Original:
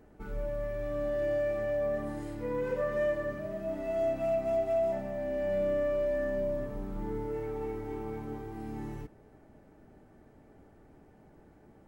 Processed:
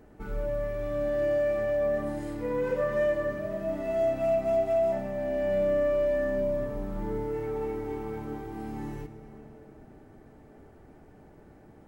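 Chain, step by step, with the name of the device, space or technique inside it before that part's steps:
compressed reverb return (on a send at −5 dB: convolution reverb RT60 2.7 s, pre-delay 58 ms + downward compressor, threshold −41 dBFS, peak gain reduction 15 dB)
on the sum: level +3.5 dB

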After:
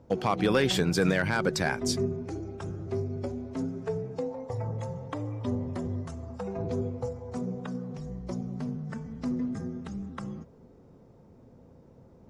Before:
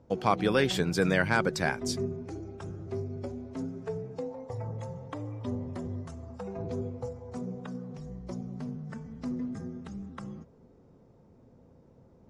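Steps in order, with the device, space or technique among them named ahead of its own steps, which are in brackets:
limiter into clipper (brickwall limiter −17 dBFS, peak gain reduction 6.5 dB; hard clipping −19 dBFS, distortion −28 dB)
level +3.5 dB

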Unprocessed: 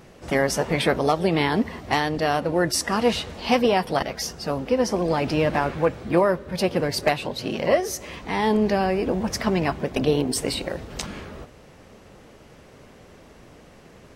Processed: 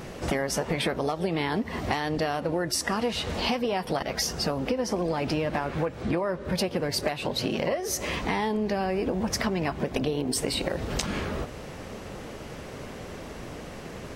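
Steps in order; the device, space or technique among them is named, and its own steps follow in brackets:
serial compression, peaks first (downward compressor, threshold −28 dBFS, peak gain reduction 14 dB; downward compressor 2 to 1, threshold −37 dBFS, peak gain reduction 7 dB)
0:06.02–0:06.45: low-pass filter 9,000 Hz 12 dB per octave
level +9 dB

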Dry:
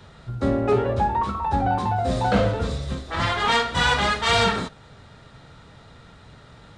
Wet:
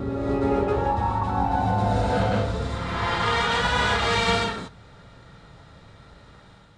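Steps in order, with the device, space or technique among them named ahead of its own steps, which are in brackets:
reverse reverb (reversed playback; convolution reverb RT60 1.9 s, pre-delay 101 ms, DRR −3.5 dB; reversed playback)
level −6.5 dB

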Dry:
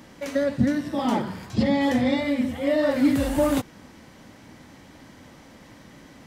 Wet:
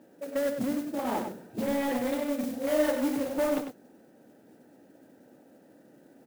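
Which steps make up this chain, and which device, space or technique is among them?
adaptive Wiener filter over 41 samples
carbon microphone (band-pass filter 370–2,900 Hz; soft clipping −22 dBFS, distortion −14 dB; noise that follows the level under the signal 17 dB)
0:02.40–0:02.91: double-tracking delay 33 ms −2 dB
slap from a distant wall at 17 metres, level −7 dB

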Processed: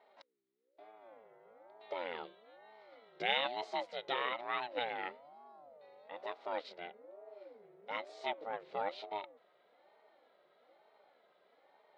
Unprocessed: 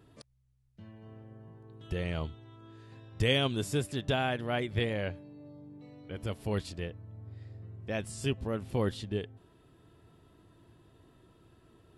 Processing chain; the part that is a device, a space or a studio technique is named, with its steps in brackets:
voice changer toy (ring modulator whose carrier an LFO sweeps 400 Hz, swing 35%, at 1.1 Hz; loudspeaker in its box 510–4,600 Hz, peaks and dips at 540 Hz +7 dB, 800 Hz +4 dB, 1,300 Hz +5 dB, 2,000 Hz +8 dB, 3,900 Hz +6 dB)
level −5 dB

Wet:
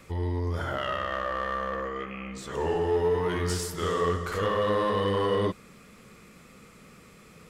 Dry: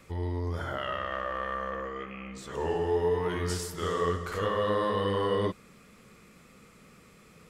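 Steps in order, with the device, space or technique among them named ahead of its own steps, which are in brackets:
parallel distortion (in parallel at −6 dB: hard clipping −30 dBFS, distortion −8 dB)

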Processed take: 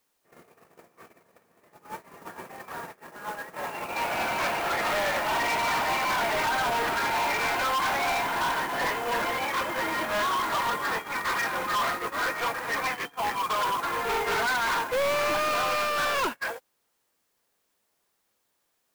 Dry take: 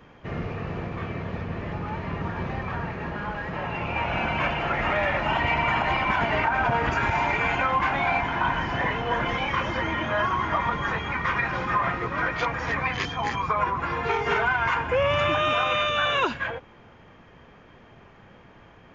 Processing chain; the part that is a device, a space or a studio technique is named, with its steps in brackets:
aircraft radio (band-pass filter 350–2,400 Hz; hard clipping −29 dBFS, distortion −6 dB; white noise bed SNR 15 dB; noise gate −32 dBFS, range −34 dB)
level +6 dB

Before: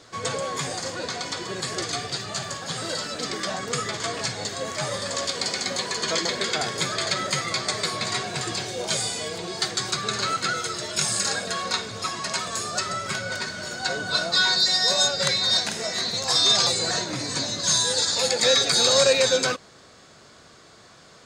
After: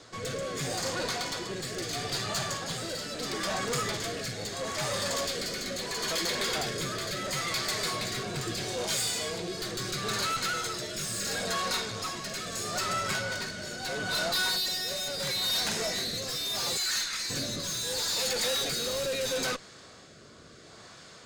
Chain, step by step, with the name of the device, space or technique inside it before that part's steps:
0:16.77–0:17.30: Butterworth high-pass 1,200 Hz 48 dB per octave
overdriven rotary cabinet (tube saturation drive 30 dB, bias 0.5; rotating-speaker cabinet horn 0.75 Hz)
level +4 dB

